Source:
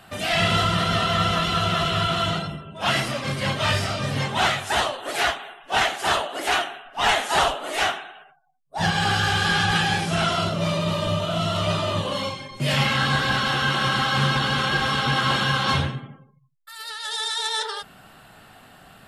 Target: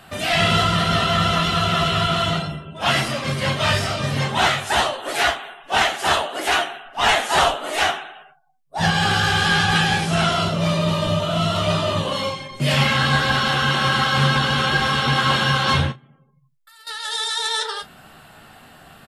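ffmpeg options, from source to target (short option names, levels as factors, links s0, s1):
-filter_complex "[0:a]asettb=1/sr,asplit=3[s0][s1][s2];[s0]atrim=end=15.924[s3];[s1]atrim=start=15.92:end=16.87,asetpts=PTS-STARTPTS,afade=t=in:d=0.004:c=qsin,afade=t=out:st=0.946:d=0.004:c=qsin,acompressor=threshold=0.00158:ratio=2.5[s4];[s2]atrim=start=16.866[s5];[s3][s4]acrossfade=d=0.004:c1=hsin:c2=qsin[s6];[s6][s5]acrossfade=d=0.004:c1=qsin:c2=hsin,asplit=2[s7][s8];[s8]aecho=0:1:13|37:0.335|0.158[s9];[s7][s9]amix=inputs=2:normalize=0,volume=1.33"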